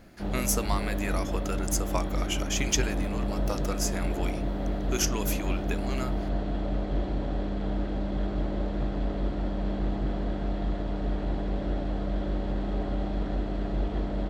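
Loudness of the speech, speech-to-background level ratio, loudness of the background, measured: −32.5 LKFS, −1.0 dB, −31.5 LKFS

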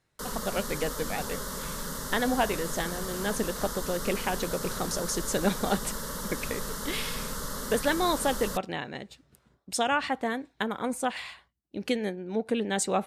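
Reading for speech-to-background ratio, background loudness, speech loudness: 4.0 dB, −35.0 LKFS, −31.0 LKFS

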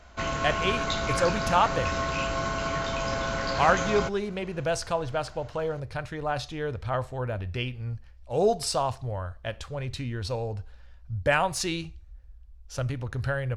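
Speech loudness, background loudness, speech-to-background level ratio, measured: −29.5 LKFS, −29.0 LKFS, −0.5 dB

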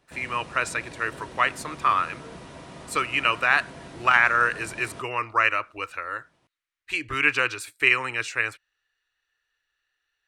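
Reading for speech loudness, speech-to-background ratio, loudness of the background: −24.0 LKFS, 19.0 dB, −43.0 LKFS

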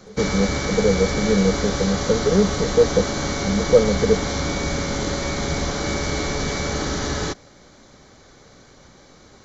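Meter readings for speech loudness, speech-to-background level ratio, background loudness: −21.0 LKFS, 3.5 dB, −24.5 LKFS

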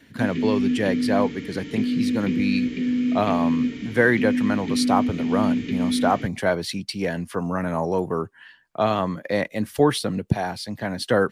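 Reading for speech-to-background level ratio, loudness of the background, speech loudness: −0.5 dB, −24.5 LKFS, −25.0 LKFS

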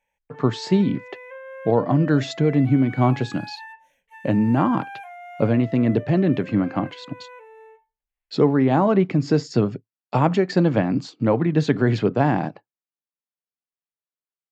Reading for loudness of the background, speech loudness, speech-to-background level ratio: −39.5 LKFS, −21.0 LKFS, 18.5 dB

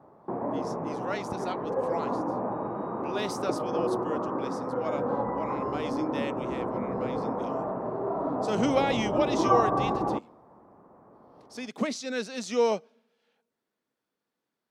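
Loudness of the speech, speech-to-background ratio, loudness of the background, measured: −33.0 LKFS, −2.5 dB, −30.5 LKFS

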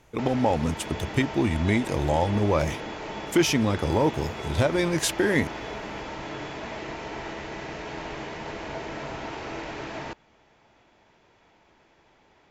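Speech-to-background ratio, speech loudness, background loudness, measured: 10.5 dB, −25.0 LKFS, −35.5 LKFS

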